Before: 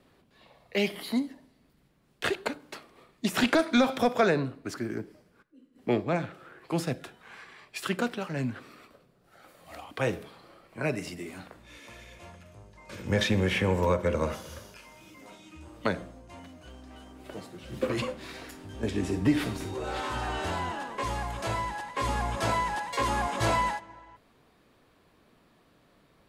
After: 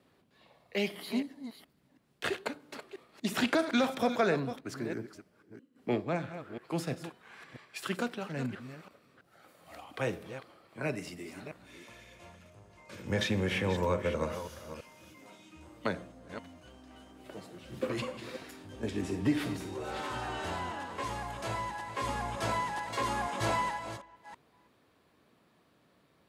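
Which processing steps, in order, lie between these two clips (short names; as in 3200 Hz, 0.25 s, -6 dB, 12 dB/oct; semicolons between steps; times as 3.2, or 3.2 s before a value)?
reverse delay 0.329 s, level -11 dB; HPF 79 Hz; gain -4.5 dB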